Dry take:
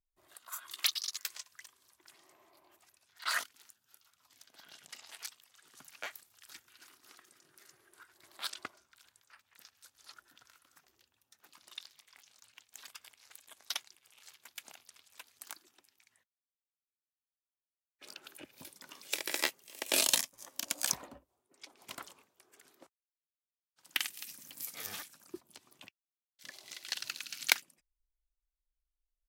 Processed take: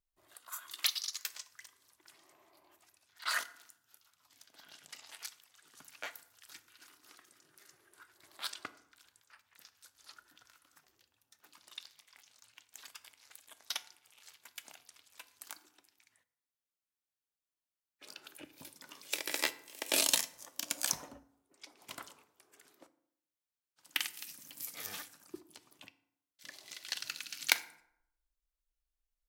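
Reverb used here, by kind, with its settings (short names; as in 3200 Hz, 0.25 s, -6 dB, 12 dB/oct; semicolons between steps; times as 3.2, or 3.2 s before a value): FDN reverb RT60 0.74 s, low-frequency decay 1.05×, high-frequency decay 0.6×, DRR 12 dB; gain -1 dB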